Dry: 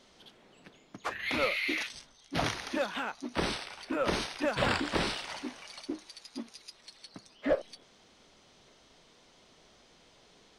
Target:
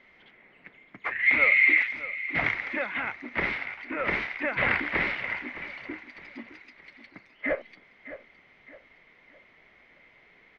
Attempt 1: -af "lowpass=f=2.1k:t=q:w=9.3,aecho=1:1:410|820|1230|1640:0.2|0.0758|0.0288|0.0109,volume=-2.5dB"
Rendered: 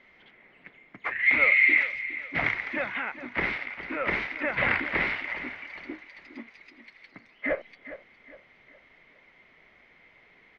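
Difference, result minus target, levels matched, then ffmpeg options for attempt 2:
echo 0.203 s early
-af "lowpass=f=2.1k:t=q:w=9.3,aecho=1:1:613|1226|1839|2452:0.2|0.0758|0.0288|0.0109,volume=-2.5dB"

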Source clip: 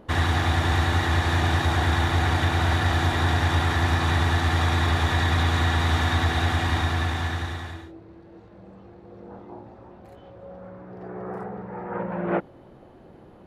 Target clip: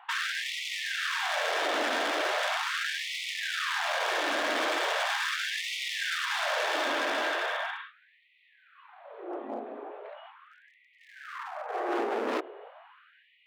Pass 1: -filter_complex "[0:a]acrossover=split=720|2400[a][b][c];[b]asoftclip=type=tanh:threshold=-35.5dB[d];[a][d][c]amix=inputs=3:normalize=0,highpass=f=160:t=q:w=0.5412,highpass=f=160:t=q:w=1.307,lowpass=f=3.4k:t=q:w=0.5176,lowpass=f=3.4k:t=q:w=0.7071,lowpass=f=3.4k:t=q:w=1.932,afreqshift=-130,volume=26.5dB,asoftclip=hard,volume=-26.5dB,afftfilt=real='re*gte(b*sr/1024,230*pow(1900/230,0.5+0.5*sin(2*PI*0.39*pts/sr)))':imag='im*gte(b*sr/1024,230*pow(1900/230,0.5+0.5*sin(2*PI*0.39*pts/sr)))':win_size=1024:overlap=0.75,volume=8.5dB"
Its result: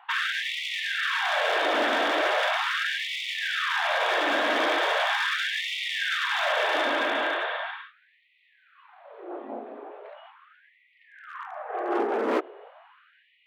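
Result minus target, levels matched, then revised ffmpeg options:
overloaded stage: distortion -7 dB
-filter_complex "[0:a]acrossover=split=720|2400[a][b][c];[b]asoftclip=type=tanh:threshold=-35.5dB[d];[a][d][c]amix=inputs=3:normalize=0,highpass=f=160:t=q:w=0.5412,highpass=f=160:t=q:w=1.307,lowpass=f=3.4k:t=q:w=0.5176,lowpass=f=3.4k:t=q:w=0.7071,lowpass=f=3.4k:t=q:w=1.932,afreqshift=-130,volume=34dB,asoftclip=hard,volume=-34dB,afftfilt=real='re*gte(b*sr/1024,230*pow(1900/230,0.5+0.5*sin(2*PI*0.39*pts/sr)))':imag='im*gte(b*sr/1024,230*pow(1900/230,0.5+0.5*sin(2*PI*0.39*pts/sr)))':win_size=1024:overlap=0.75,volume=8.5dB"

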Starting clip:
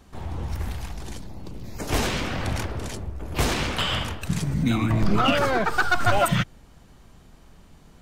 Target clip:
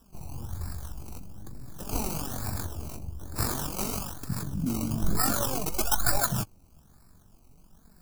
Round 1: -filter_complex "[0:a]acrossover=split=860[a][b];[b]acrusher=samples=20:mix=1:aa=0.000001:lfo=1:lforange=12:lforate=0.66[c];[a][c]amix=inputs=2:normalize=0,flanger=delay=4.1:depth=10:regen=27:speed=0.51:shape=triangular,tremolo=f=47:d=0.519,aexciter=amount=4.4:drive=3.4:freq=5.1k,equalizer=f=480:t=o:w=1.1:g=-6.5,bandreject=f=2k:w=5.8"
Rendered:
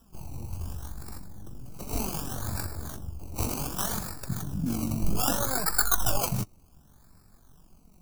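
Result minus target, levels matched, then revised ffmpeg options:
decimation with a swept rate: distortion +10 dB
-filter_complex "[0:a]acrossover=split=860[a][b];[b]acrusher=samples=20:mix=1:aa=0.000001:lfo=1:lforange=12:lforate=1.1[c];[a][c]amix=inputs=2:normalize=0,flanger=delay=4.1:depth=10:regen=27:speed=0.51:shape=triangular,tremolo=f=47:d=0.519,aexciter=amount=4.4:drive=3.4:freq=5.1k,equalizer=f=480:t=o:w=1.1:g=-6.5,bandreject=f=2k:w=5.8"

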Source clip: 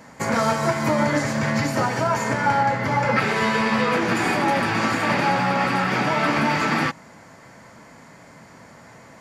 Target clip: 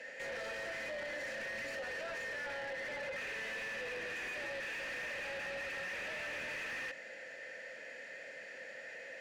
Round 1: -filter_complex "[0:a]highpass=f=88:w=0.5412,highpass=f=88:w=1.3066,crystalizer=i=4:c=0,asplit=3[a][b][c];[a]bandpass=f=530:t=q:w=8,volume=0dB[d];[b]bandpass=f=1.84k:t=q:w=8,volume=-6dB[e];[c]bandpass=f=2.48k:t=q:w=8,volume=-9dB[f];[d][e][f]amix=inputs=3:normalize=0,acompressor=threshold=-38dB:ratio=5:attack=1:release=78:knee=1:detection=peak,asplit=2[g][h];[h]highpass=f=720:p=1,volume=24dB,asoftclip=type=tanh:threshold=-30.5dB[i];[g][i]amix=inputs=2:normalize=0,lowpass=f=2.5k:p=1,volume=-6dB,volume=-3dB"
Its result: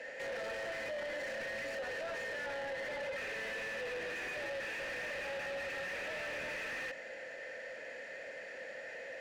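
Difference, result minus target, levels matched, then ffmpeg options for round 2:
500 Hz band +3.0 dB
-filter_complex "[0:a]highpass=f=88:w=0.5412,highpass=f=88:w=1.3066,crystalizer=i=4:c=0,asplit=3[a][b][c];[a]bandpass=f=530:t=q:w=8,volume=0dB[d];[b]bandpass=f=1.84k:t=q:w=8,volume=-6dB[e];[c]bandpass=f=2.48k:t=q:w=8,volume=-9dB[f];[d][e][f]amix=inputs=3:normalize=0,acompressor=threshold=-38dB:ratio=5:attack=1:release=78:knee=1:detection=peak,equalizer=f=600:w=0.56:g=-6,asplit=2[g][h];[h]highpass=f=720:p=1,volume=24dB,asoftclip=type=tanh:threshold=-30.5dB[i];[g][i]amix=inputs=2:normalize=0,lowpass=f=2.5k:p=1,volume=-6dB,volume=-3dB"

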